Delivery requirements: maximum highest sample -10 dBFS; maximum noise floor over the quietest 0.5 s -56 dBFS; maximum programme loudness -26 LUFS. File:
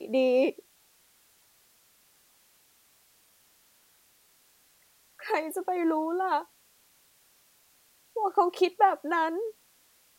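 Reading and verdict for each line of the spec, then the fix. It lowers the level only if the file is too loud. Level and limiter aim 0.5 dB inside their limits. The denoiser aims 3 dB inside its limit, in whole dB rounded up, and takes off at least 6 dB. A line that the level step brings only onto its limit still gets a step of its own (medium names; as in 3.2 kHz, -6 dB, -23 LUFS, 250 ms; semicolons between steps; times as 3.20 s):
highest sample -9.5 dBFS: fail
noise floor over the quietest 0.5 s -64 dBFS: pass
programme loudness -27.5 LUFS: pass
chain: peak limiter -10.5 dBFS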